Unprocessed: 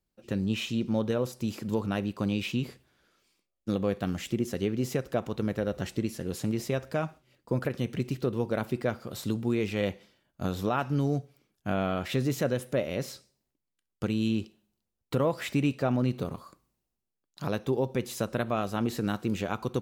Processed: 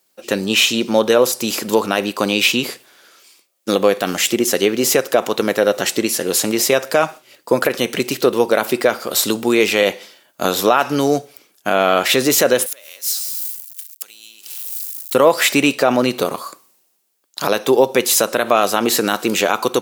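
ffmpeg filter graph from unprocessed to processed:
-filter_complex "[0:a]asettb=1/sr,asplit=3[a][b][c];[a]atrim=end=12.664[d];[b]atrim=start=12.66:end=15.15,asetpts=PTS-STARTPTS,afade=t=in:d=0.004:c=qsin,afade=t=out:st=2.486:d=0.004:c=qsin,aeval=exprs='val(0)+0.5*0.00596*sgn(val(0))':c=same,acompressor=threshold=-39dB:ratio=12:attack=3.2:release=140:knee=1:detection=peak,aderivative[e];[c]atrim=start=15.146[f];[d][e]acrossfade=d=0.004:c1=hsin:c2=qsin[g];[g][f]acrossfade=d=0.004:c1=qsin:c2=hsin,highpass=430,highshelf=f=4.8k:g=8.5,alimiter=level_in=20dB:limit=-1dB:release=50:level=0:latency=1,volume=-1dB"

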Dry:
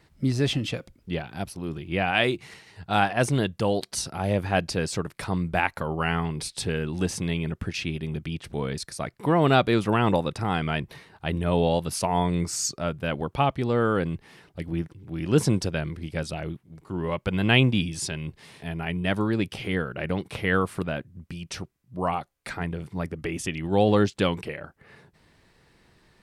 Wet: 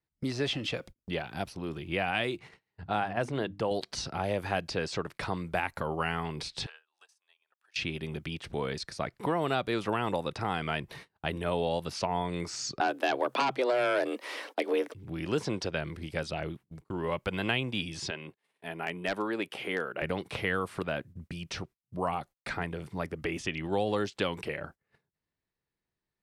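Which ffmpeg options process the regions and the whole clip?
-filter_complex "[0:a]asettb=1/sr,asplit=3[a][b][c];[a]atrim=end=2.394[d];[b]atrim=start=2.39:end=3.71,asetpts=PTS-STARTPTS,afade=t=in:d=0.004:c=qsin,afade=t=out:st=1.316:d=0.004:c=qsin,lowpass=f=1.7k:p=1,bandreject=f=50:t=h:w=6,bandreject=f=100:t=h:w=6,bandreject=f=150:t=h:w=6,bandreject=f=200:t=h:w=6,bandreject=f=250:t=h:w=6,bandreject=f=300:t=h:w=6[e];[c]atrim=start=3.706[f];[d][e]acrossfade=d=0.004:c1=hsin:c2=qsin[g];[g][f]acrossfade=d=0.004:c1=qsin:c2=hsin,asettb=1/sr,asplit=3[h][i][j];[h]atrim=end=6.664[k];[i]atrim=start=6.66:end=7.76,asetpts=PTS-STARTPTS,afade=t=in:d=0.004:c=qsin,afade=t=out:st=1.096:d=0.004:c=qsin,highpass=f=820:w=0.5412,highpass=f=820:w=1.3066,equalizer=f=2.1k:w=7.8:g=-9,acompressor=threshold=-45dB:ratio=20:attack=3.2:release=140:knee=1:detection=peak[l];[j]atrim=start=7.756[m];[k][l]acrossfade=d=0.004:c1=hsin:c2=qsin[n];[n][m]acrossfade=d=0.004:c1=qsin:c2=hsin,asettb=1/sr,asplit=3[o][p][q];[o]atrim=end=12.804[r];[p]atrim=start=12.8:end=14.94,asetpts=PTS-STARTPTS,afade=t=in:d=0.004:c=qsin,afade=t=out:st=2.136:d=0.004:c=qsin,highpass=310,aeval=exprs='0.316*sin(PI/2*2.82*val(0)/0.316)':c=same,afreqshift=130[s];[q]atrim=start=14.936[t];[r][s]acrossfade=d=0.004:c1=hsin:c2=qsin[u];[u][t]acrossfade=d=0.004:c1=qsin:c2=hsin,asettb=1/sr,asplit=3[v][w][x];[v]atrim=end=18.104[y];[w]atrim=start=18.1:end=20.02,asetpts=PTS-STARTPTS,afade=t=in:d=0.004:c=qsin,afade=t=out:st=1.916:d=0.004:c=qsin,highpass=360,equalizer=f=5.2k:w=1.2:g=-8.5,aeval=exprs='0.119*(abs(mod(val(0)/0.119+3,4)-2)-1)':c=same[z];[x]atrim=start=20.016[aa];[y][z]acrossfade=d=0.004:c1=hsin:c2=qsin[ab];[ab][aa]acrossfade=d=0.004:c1=qsin:c2=hsin,acrossover=split=350|6100[ac][ad][ae];[ac]acompressor=threshold=-38dB:ratio=4[af];[ad]acompressor=threshold=-28dB:ratio=4[ag];[ae]acompressor=threshold=-54dB:ratio=4[ah];[af][ag][ah]amix=inputs=3:normalize=0,agate=range=-30dB:threshold=-47dB:ratio=16:detection=peak,acrossover=split=7000[ai][aj];[aj]acompressor=threshold=-53dB:ratio=4:attack=1:release=60[ak];[ai][ak]amix=inputs=2:normalize=0"

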